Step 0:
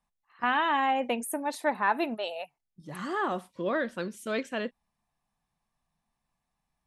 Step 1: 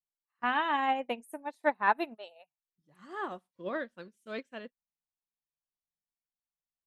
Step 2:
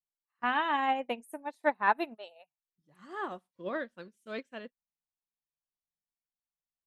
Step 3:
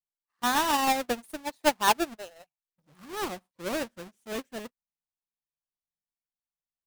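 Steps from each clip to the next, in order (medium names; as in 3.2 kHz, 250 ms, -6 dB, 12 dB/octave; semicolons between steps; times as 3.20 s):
upward expansion 2.5:1, over -41 dBFS; trim +2 dB
no audible change
square wave that keeps the level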